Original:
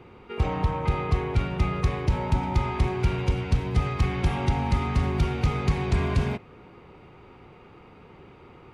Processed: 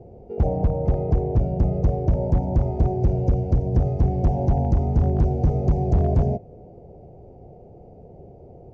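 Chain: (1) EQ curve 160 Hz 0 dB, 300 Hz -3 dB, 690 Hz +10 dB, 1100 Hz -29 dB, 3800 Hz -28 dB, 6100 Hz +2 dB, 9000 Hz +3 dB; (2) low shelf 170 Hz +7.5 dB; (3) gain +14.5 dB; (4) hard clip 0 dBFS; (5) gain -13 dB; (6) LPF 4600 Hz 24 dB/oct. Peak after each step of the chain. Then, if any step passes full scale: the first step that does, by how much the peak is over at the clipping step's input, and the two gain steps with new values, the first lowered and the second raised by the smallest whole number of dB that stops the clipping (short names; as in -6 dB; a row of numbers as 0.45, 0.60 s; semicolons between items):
-12.0, -6.5, +8.0, 0.0, -13.0, -13.0 dBFS; step 3, 8.0 dB; step 3 +6.5 dB, step 5 -5 dB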